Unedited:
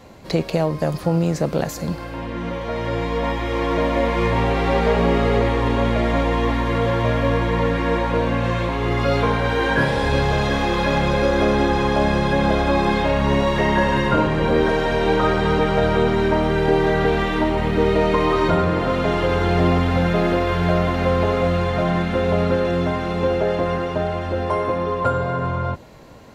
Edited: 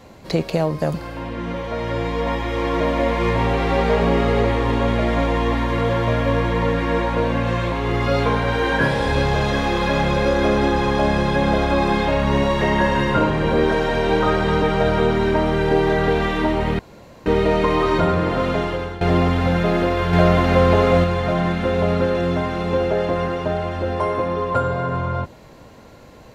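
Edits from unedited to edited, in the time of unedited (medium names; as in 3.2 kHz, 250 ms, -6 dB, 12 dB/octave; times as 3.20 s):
0.94–1.91 s: delete
17.76 s: insert room tone 0.47 s
19.00–19.51 s: fade out, to -16.5 dB
20.63–21.54 s: gain +4 dB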